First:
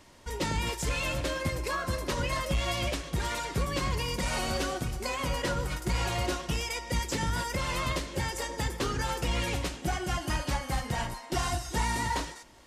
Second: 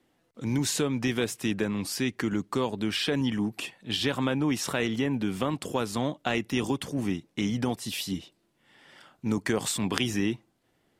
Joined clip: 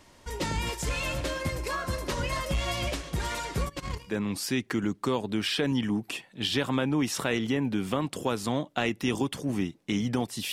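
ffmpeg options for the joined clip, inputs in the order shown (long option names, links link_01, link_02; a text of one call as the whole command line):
ffmpeg -i cue0.wav -i cue1.wav -filter_complex "[0:a]asplit=3[link_01][link_02][link_03];[link_01]afade=type=out:start_time=3.68:duration=0.02[link_04];[link_02]agate=range=-21dB:threshold=-29dB:ratio=16:release=100:detection=peak,afade=type=in:start_time=3.68:duration=0.02,afade=type=out:start_time=4.16:duration=0.02[link_05];[link_03]afade=type=in:start_time=4.16:duration=0.02[link_06];[link_04][link_05][link_06]amix=inputs=3:normalize=0,apad=whole_dur=10.52,atrim=end=10.52,atrim=end=4.16,asetpts=PTS-STARTPTS[link_07];[1:a]atrim=start=1.55:end=8.01,asetpts=PTS-STARTPTS[link_08];[link_07][link_08]acrossfade=duration=0.1:curve1=tri:curve2=tri" out.wav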